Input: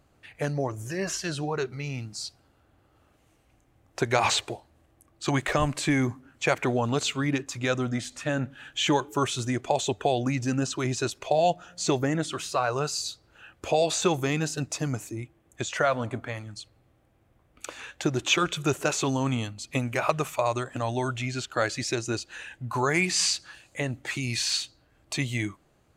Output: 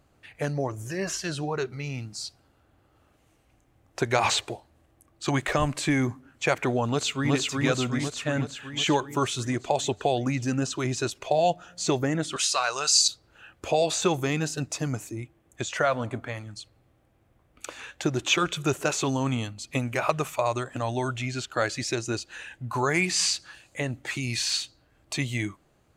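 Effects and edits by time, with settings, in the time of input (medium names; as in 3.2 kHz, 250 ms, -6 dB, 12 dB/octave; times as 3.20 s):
6.87–7.33 s: echo throw 370 ms, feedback 65%, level -1 dB
12.36–13.08 s: frequency weighting ITU-R 468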